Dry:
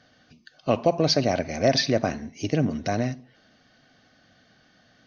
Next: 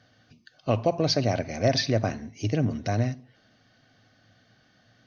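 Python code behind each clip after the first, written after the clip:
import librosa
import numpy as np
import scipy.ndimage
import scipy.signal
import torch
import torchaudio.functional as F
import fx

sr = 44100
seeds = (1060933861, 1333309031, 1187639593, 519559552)

y = fx.peak_eq(x, sr, hz=110.0, db=12.5, octaves=0.28)
y = y * 10.0 ** (-3.0 / 20.0)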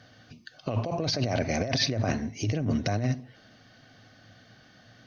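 y = fx.over_compress(x, sr, threshold_db=-29.0, ratio=-1.0)
y = y * 10.0 ** (2.0 / 20.0)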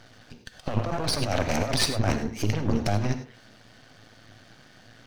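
y = np.maximum(x, 0.0)
y = fx.rev_gated(y, sr, seeds[0], gate_ms=120, shape='rising', drr_db=10.0)
y = y * 10.0 ** (6.5 / 20.0)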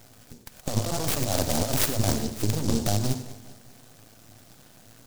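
y = fx.echo_feedback(x, sr, ms=199, feedback_pct=50, wet_db=-17)
y = fx.noise_mod_delay(y, sr, seeds[1], noise_hz=5600.0, depth_ms=0.15)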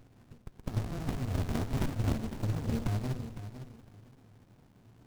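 y = fx.echo_feedback(x, sr, ms=507, feedback_pct=22, wet_db=-11.0)
y = fx.running_max(y, sr, window=65)
y = y * 10.0 ** (-7.5 / 20.0)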